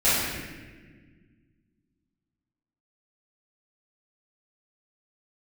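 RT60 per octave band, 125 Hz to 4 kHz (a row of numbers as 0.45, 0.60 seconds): 2.6, 2.5, 1.9, 1.2, 1.6, 1.1 seconds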